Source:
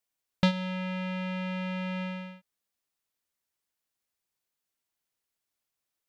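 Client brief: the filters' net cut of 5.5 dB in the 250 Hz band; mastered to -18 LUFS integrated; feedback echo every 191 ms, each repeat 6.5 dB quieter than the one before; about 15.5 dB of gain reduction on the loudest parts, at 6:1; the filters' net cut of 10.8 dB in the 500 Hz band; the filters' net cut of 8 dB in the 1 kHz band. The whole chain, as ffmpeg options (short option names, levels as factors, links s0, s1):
-af "equalizer=f=250:t=o:g=-8,equalizer=f=500:t=o:g=-8.5,equalizer=f=1000:t=o:g=-7.5,acompressor=threshold=0.00891:ratio=6,aecho=1:1:191|382|573|764|955|1146:0.473|0.222|0.105|0.0491|0.0231|0.0109,volume=18.8"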